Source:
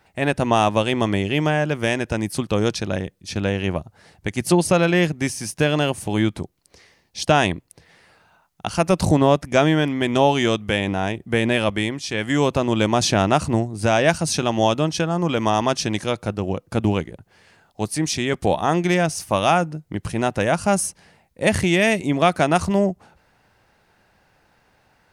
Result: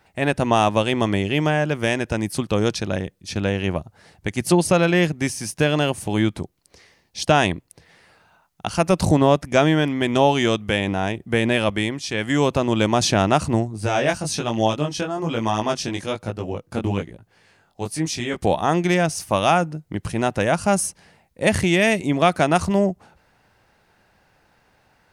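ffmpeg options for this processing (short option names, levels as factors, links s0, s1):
-filter_complex "[0:a]asplit=3[s0][s1][s2];[s0]afade=t=out:st=13.67:d=0.02[s3];[s1]flanger=delay=17.5:depth=4:speed=1.1,afade=t=in:st=13.67:d=0.02,afade=t=out:st=18.41:d=0.02[s4];[s2]afade=t=in:st=18.41:d=0.02[s5];[s3][s4][s5]amix=inputs=3:normalize=0"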